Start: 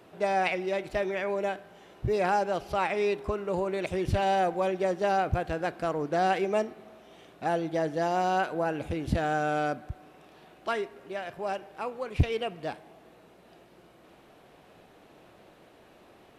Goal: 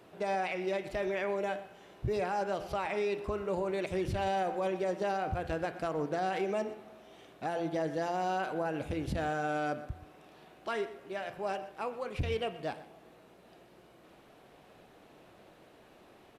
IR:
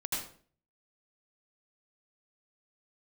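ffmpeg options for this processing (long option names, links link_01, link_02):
-af "bandreject=frequency=85.37:width_type=h:width=4,bandreject=frequency=170.74:width_type=h:width=4,bandreject=frequency=256.11:width_type=h:width=4,bandreject=frequency=341.48:width_type=h:width=4,bandreject=frequency=426.85:width_type=h:width=4,bandreject=frequency=512.22:width_type=h:width=4,bandreject=frequency=597.59:width_type=h:width=4,bandreject=frequency=682.96:width_type=h:width=4,bandreject=frequency=768.33:width_type=h:width=4,bandreject=frequency=853.7:width_type=h:width=4,bandreject=frequency=939.07:width_type=h:width=4,bandreject=frequency=1024.44:width_type=h:width=4,bandreject=frequency=1109.81:width_type=h:width=4,bandreject=frequency=1195.18:width_type=h:width=4,bandreject=frequency=1280.55:width_type=h:width=4,bandreject=frequency=1365.92:width_type=h:width=4,bandreject=frequency=1451.29:width_type=h:width=4,bandreject=frequency=1536.66:width_type=h:width=4,bandreject=frequency=1622.03:width_type=h:width=4,bandreject=frequency=1707.4:width_type=h:width=4,bandreject=frequency=1792.77:width_type=h:width=4,bandreject=frequency=1878.14:width_type=h:width=4,bandreject=frequency=1963.51:width_type=h:width=4,bandreject=frequency=2048.88:width_type=h:width=4,bandreject=frequency=2134.25:width_type=h:width=4,bandreject=frequency=2219.62:width_type=h:width=4,bandreject=frequency=2304.99:width_type=h:width=4,bandreject=frequency=2390.36:width_type=h:width=4,bandreject=frequency=2475.73:width_type=h:width=4,bandreject=frequency=2561.1:width_type=h:width=4,bandreject=frequency=2646.47:width_type=h:width=4,bandreject=frequency=2731.84:width_type=h:width=4,bandreject=frequency=2817.21:width_type=h:width=4,bandreject=frequency=2902.58:width_type=h:width=4,bandreject=frequency=2987.95:width_type=h:width=4,bandreject=frequency=3073.32:width_type=h:width=4,bandreject=frequency=3158.69:width_type=h:width=4,bandreject=frequency=3244.06:width_type=h:width=4,bandreject=frequency=3329.43:width_type=h:width=4,bandreject=frequency=3414.8:width_type=h:width=4,alimiter=limit=-22.5dB:level=0:latency=1:release=74,aecho=1:1:123:0.141,volume=-2dB"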